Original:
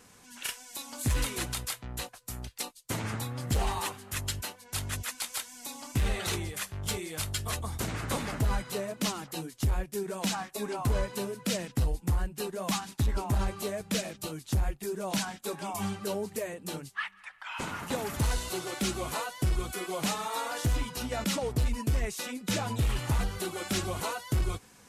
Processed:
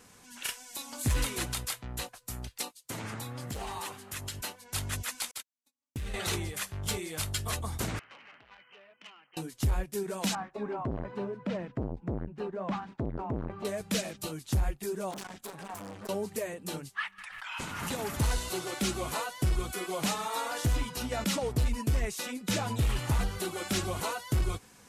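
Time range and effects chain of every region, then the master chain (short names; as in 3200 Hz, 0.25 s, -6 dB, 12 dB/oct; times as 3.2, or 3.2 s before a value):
2.64–4.41 HPF 120 Hz 6 dB/oct + compressor 3:1, threshold -35 dBFS
5.31–6.14 gate -35 dBFS, range -53 dB + bell 780 Hz -6 dB 1.1 oct + compressor 4:1, threshold -35 dBFS
7.99–9.37 brick-wall FIR low-pass 3200 Hz + differentiator + core saturation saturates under 3200 Hz
10.35–13.65 LPF 1600 Hz + core saturation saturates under 310 Hz
15.11–16.09 low shelf 120 Hz +6.5 dB + hard clip -33.5 dBFS + core saturation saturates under 560 Hz
17.18–17.99 bell 560 Hz -5.5 dB 3 oct + backwards sustainer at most 31 dB/s
whole clip: dry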